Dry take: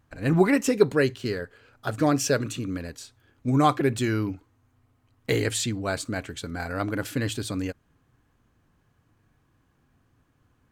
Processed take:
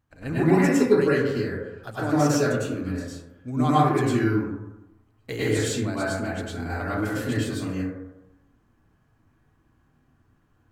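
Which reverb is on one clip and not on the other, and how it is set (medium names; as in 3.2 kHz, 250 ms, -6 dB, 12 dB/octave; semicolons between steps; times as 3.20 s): plate-style reverb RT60 0.96 s, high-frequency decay 0.3×, pre-delay 90 ms, DRR -9.5 dB; trim -9 dB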